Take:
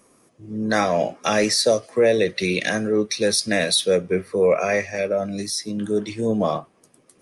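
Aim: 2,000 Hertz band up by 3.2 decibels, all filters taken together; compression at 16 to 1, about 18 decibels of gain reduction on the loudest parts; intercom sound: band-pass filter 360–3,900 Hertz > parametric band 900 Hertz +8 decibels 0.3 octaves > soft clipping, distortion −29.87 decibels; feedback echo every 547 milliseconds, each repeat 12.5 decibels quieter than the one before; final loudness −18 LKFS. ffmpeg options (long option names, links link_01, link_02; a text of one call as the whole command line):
ffmpeg -i in.wav -af "equalizer=frequency=2000:width_type=o:gain=4,acompressor=threshold=-31dB:ratio=16,highpass=360,lowpass=3900,equalizer=frequency=900:width_type=o:width=0.3:gain=8,aecho=1:1:547|1094|1641:0.237|0.0569|0.0137,asoftclip=threshold=-19.5dB,volume=19.5dB" out.wav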